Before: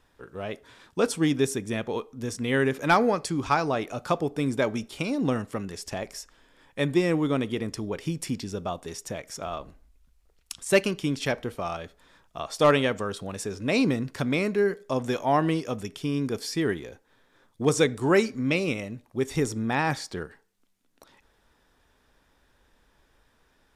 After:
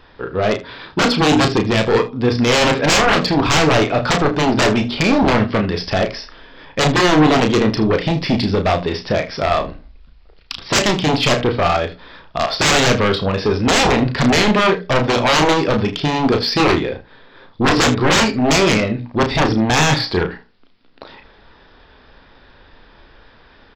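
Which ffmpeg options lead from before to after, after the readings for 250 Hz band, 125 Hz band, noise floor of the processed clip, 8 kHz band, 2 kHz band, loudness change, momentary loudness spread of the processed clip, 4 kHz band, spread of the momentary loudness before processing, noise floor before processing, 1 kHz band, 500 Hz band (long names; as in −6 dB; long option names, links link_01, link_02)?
+10.5 dB, +12.0 dB, −48 dBFS, +13.0 dB, +13.0 dB, +11.5 dB, 8 LU, +17.5 dB, 14 LU, −66 dBFS, +12.5 dB, +9.5 dB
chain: -af "bandreject=frequency=60:width_type=h:width=6,bandreject=frequency=120:width_type=h:width=6,bandreject=frequency=180:width_type=h:width=6,bandreject=frequency=240:width_type=h:width=6,bandreject=frequency=300:width_type=h:width=6,aresample=11025,aresample=44100,aresample=16000,aeval=exprs='0.398*sin(PI/2*7.94*val(0)/0.398)':channel_layout=same,aresample=44100,aecho=1:1:33|79:0.501|0.158,aeval=exprs='0.841*(cos(1*acos(clip(val(0)/0.841,-1,1)))-cos(1*PI/2))+0.0944*(cos(3*acos(clip(val(0)/0.841,-1,1)))-cos(3*PI/2))':channel_layout=same,volume=-1dB"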